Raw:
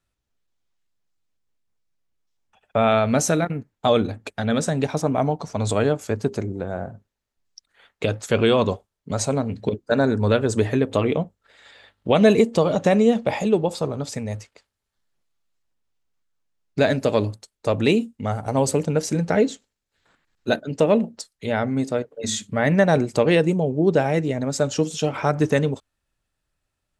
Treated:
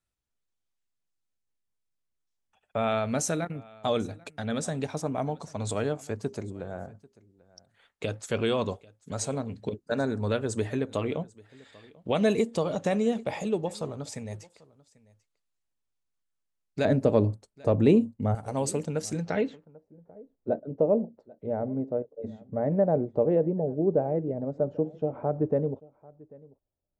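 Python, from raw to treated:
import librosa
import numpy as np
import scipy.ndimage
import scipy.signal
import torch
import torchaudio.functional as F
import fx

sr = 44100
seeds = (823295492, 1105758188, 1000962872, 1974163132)

p1 = fx.tilt_shelf(x, sr, db=9.5, hz=1300.0, at=(16.85, 18.35))
p2 = p1 + fx.echo_single(p1, sr, ms=791, db=-23.5, dry=0)
p3 = fx.filter_sweep_lowpass(p2, sr, from_hz=9900.0, to_hz=600.0, start_s=19.11, end_s=19.85, q=1.6)
y = p3 * librosa.db_to_amplitude(-9.0)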